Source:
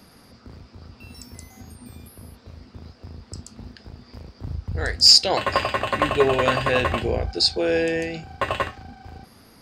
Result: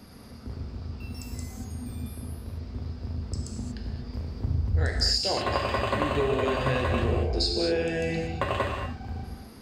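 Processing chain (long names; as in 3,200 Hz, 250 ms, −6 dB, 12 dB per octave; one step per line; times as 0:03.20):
low-shelf EQ 410 Hz +7 dB
downward compressor 12 to 1, threshold −21 dBFS, peak gain reduction 13.5 dB
reverb whose tail is shaped and stops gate 260 ms flat, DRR 1 dB
level −3 dB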